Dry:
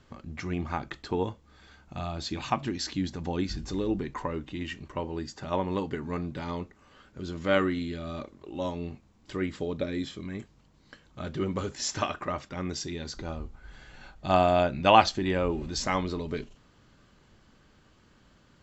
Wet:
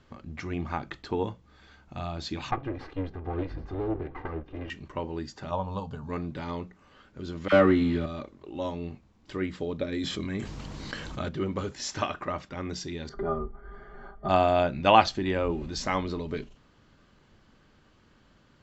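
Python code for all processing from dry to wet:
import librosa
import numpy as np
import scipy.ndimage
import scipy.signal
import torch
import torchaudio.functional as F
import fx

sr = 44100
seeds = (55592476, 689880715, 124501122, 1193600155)

y = fx.chain(x, sr, fx.lower_of_two(delay_ms=2.5),
    fx.lowpass(hz=1700.0, slope=12),
    fx.echo_single(ms=780, db=-18.5), at=(2.51, 4.7))
y = fx.chain(y, sr, fx.peak_eq(hz=110.0, db=4.5, octaves=1.5),
    fx.fixed_phaser(hz=820.0, stages=4), at=(5.51, 6.09))
y = fx.chain(y, sr, fx.leveller(passes=2),
    fx.high_shelf(hz=3600.0, db=-10.5),
    fx.dispersion(late='lows', ms=48.0, hz=1200.0), at=(7.48, 8.06))
y = fx.chain(y, sr, fx.high_shelf(hz=5600.0, db=6.0),
    fx.env_flatten(amount_pct=70), at=(9.92, 11.29))
y = fx.chain(y, sr, fx.savgol(points=41),
    fx.comb(ms=5.0, depth=0.81),
    fx.small_body(hz=(400.0, 680.0, 1200.0), ring_ms=90, db=15), at=(13.09, 14.29))
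y = scipy.signal.sosfilt(scipy.signal.bessel(2, 5700.0, 'lowpass', norm='mag', fs=sr, output='sos'), y)
y = fx.hum_notches(y, sr, base_hz=60, count=3)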